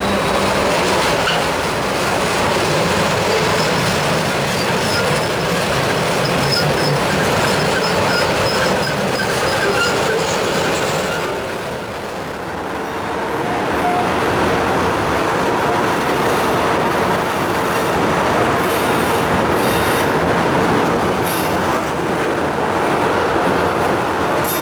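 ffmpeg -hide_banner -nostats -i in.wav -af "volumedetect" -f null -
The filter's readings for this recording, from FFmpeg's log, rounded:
mean_volume: -16.7 dB
max_volume: -3.5 dB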